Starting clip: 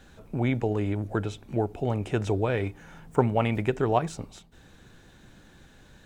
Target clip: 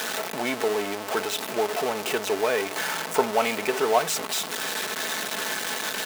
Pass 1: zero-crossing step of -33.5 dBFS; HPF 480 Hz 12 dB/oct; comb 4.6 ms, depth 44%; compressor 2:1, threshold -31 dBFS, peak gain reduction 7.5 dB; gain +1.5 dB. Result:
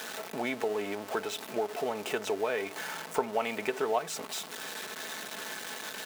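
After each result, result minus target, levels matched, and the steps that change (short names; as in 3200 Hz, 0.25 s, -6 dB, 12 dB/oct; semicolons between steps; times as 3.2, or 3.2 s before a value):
compressor: peak gain reduction +7.5 dB; zero-crossing step: distortion -8 dB
remove: compressor 2:1, threshold -31 dBFS, peak gain reduction 7.5 dB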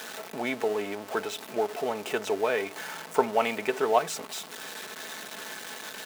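zero-crossing step: distortion -8 dB
change: zero-crossing step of -22.5 dBFS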